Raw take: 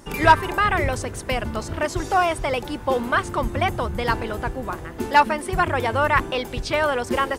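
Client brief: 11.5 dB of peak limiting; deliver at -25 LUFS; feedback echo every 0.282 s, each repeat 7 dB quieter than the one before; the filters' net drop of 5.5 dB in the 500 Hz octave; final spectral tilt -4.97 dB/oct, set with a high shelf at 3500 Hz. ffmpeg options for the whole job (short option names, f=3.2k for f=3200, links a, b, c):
-af "equalizer=f=500:t=o:g=-7,highshelf=f=3.5k:g=-3.5,alimiter=limit=-16.5dB:level=0:latency=1,aecho=1:1:282|564|846|1128|1410:0.447|0.201|0.0905|0.0407|0.0183,volume=2dB"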